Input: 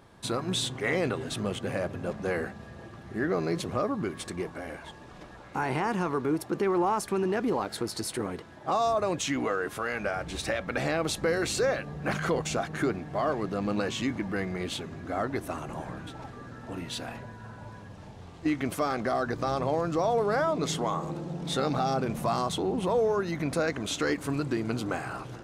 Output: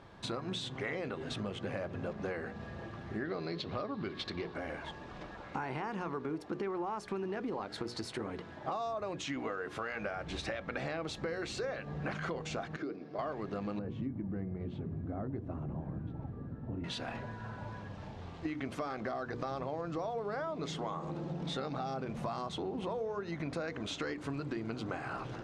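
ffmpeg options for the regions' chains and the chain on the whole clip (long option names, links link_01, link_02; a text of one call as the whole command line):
ffmpeg -i in.wav -filter_complex "[0:a]asettb=1/sr,asplit=3[link_01][link_02][link_03];[link_01]atrim=end=3.254[link_04];[link_02]atrim=start=3.25:end=4.54,asetpts=PTS-STARTPTS,afade=type=in:duration=0.004:curve=qsin,afade=type=out:start_time=1.286:duration=0.004:curve=qsin,lowpass=frequency=4200:width_type=q:width=3.2,aeval=exprs='sgn(val(0))*max(abs(val(0))-0.00106,0)':channel_layout=same[link_05];[link_03]atrim=start=4.536[link_06];[link_04][link_05]acrossfade=duration=0.004:curve1=hsin:curve2=qsin[link_07];[link_07][link_06]acrossfade=duration=0.004:curve1=qsin:curve2=hsin,asettb=1/sr,asplit=3[link_08][link_09][link_10];[link_08]atrim=end=12.764[link_11];[link_09]atrim=start=12.76:end=13.19,asetpts=PTS-STARTPTS,afade=type=in:duration=0.004:curve=qsin,afade=type=out:start_time=0.426:duration=0.004:curve=qsin,agate=range=-9dB:threshold=-34dB:ratio=16:release=100:detection=peak,acompressor=threshold=-39dB:ratio=3:attack=3.2:release=140:knee=1:detection=peak,highpass=200,equalizer=frequency=300:width_type=q:width=4:gain=8,equalizer=frequency=470:width_type=q:width=4:gain=7,equalizer=frequency=880:width_type=q:width=4:gain=-8,equalizer=frequency=1800:width_type=q:width=4:gain=-6,equalizer=frequency=3100:width_type=q:width=4:gain=-5,equalizer=frequency=5000:width_type=q:width=4:gain=8,lowpass=frequency=5700:width=0.5412,lowpass=frequency=5700:width=1.3066[link_12];[link_10]atrim=start=13.186[link_13];[link_11][link_12]acrossfade=duration=0.004:curve1=hsin:curve2=qsin[link_14];[link_14][link_13]acrossfade=duration=0.004:curve1=qsin:curve2=hsin,asettb=1/sr,asplit=3[link_15][link_16][link_17];[link_15]atrim=end=13.794[link_18];[link_16]atrim=start=13.79:end=16.84,asetpts=PTS-STARTPTS,afade=type=in:duration=0.004:curve=qsin,afade=type=out:start_time=3.046:duration=0.004:curve=qsin,bandpass=frequency=140:width_type=q:width=0.59,lowshelf=frequency=170:gain=8[link_19];[link_17]atrim=start=16.836[link_20];[link_18][link_19]acrossfade=duration=0.004:curve1=hsin:curve2=qsin[link_21];[link_21][link_20]acrossfade=duration=0.004:curve1=qsin:curve2=hsin,bandreject=frequency=60:width_type=h:width=6,bandreject=frequency=120:width_type=h:width=6,bandreject=frequency=180:width_type=h:width=6,bandreject=frequency=240:width_type=h:width=6,bandreject=frequency=300:width_type=h:width=6,bandreject=frequency=360:width_type=h:width=6,bandreject=frequency=420:width_type=h:width=6,bandreject=frequency=480:width_type=h:width=6,acompressor=threshold=-36dB:ratio=6,lowpass=4800,volume=1dB" out.wav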